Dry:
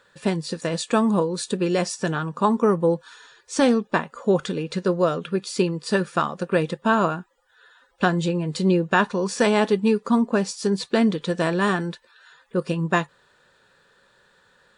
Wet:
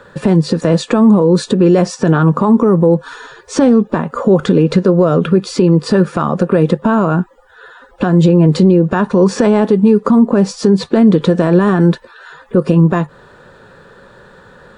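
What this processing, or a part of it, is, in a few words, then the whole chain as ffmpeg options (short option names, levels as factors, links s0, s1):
mastering chain: -filter_complex "[0:a]equalizer=f=1300:t=o:w=0.77:g=3,acrossover=split=160|7900[s0][s1][s2];[s0]acompressor=threshold=0.0126:ratio=4[s3];[s1]acompressor=threshold=0.0891:ratio=4[s4];[s2]acompressor=threshold=0.002:ratio=4[s5];[s3][s4][s5]amix=inputs=3:normalize=0,acompressor=threshold=0.0447:ratio=2.5,asoftclip=type=tanh:threshold=0.251,tiltshelf=f=1100:g=8.5,alimiter=level_in=7.08:limit=0.891:release=50:level=0:latency=1,volume=0.891"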